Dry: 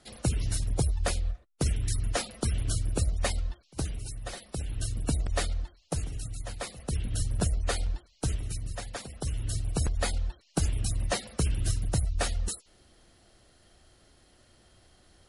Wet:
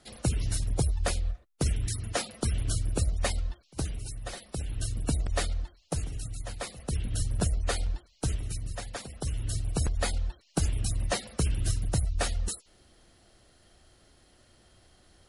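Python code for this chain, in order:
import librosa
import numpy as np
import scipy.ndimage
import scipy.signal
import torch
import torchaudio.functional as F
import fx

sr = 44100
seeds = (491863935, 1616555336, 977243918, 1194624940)

y = fx.highpass(x, sr, hz=80.0, slope=12, at=(1.87, 2.42))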